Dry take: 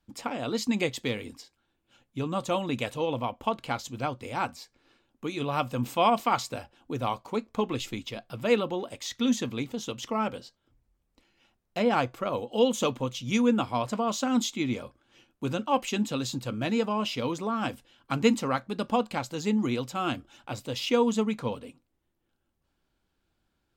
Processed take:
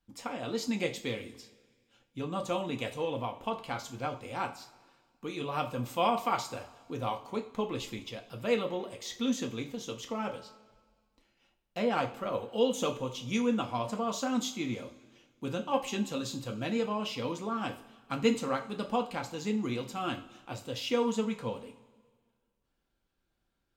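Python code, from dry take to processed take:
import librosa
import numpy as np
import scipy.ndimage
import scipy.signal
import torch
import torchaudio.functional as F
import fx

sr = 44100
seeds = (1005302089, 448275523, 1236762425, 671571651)

y = fx.rev_double_slope(x, sr, seeds[0], early_s=0.32, late_s=1.7, knee_db=-18, drr_db=3.0)
y = F.gain(torch.from_numpy(y), -6.0).numpy()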